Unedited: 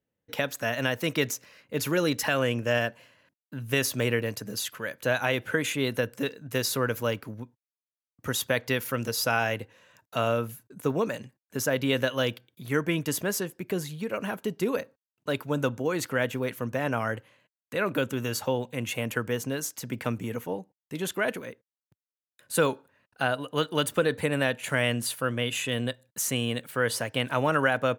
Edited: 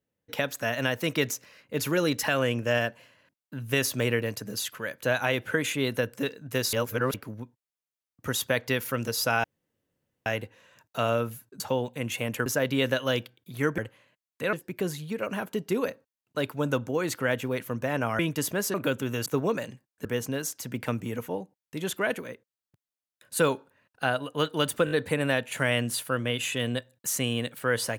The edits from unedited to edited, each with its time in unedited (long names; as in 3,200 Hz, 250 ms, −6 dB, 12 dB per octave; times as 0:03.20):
0:06.73–0:07.14: reverse
0:09.44: splice in room tone 0.82 s
0:10.78–0:11.57: swap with 0:18.37–0:19.23
0:12.89–0:13.44: swap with 0:17.10–0:17.85
0:24.03: stutter 0.02 s, 4 plays